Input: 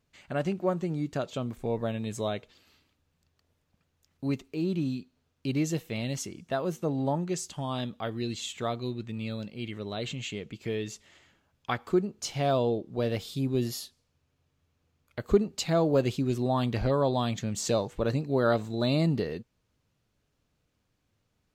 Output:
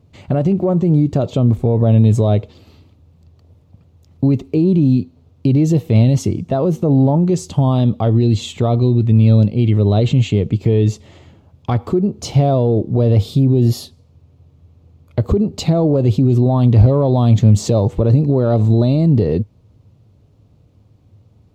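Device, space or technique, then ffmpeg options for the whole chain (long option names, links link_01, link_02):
mastering chain: -af "highpass=45,equalizer=frequency=1600:width_type=o:width=0.77:gain=3,acompressor=threshold=-29dB:ratio=2.5,asoftclip=type=tanh:threshold=-18.5dB,tiltshelf=frequency=1400:gain=8.5,alimiter=level_in=20.5dB:limit=-1dB:release=50:level=0:latency=1,equalizer=frequency=100:width_type=o:width=0.67:gain=10,equalizer=frequency=1600:width_type=o:width=0.67:gain=-12,equalizer=frequency=4000:width_type=o:width=0.67:gain=3,volume=-7dB"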